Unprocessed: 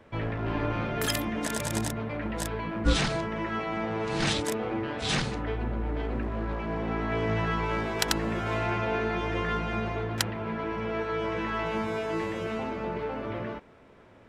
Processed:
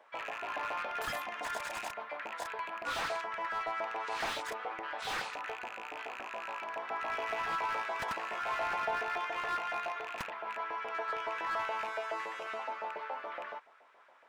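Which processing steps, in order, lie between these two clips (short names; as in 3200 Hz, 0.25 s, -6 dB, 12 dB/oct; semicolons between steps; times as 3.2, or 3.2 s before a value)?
rattling part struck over -31 dBFS, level -26 dBFS; LFO high-pass saw up 7.1 Hz 640–1600 Hz; slew limiter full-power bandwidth 84 Hz; gain -6 dB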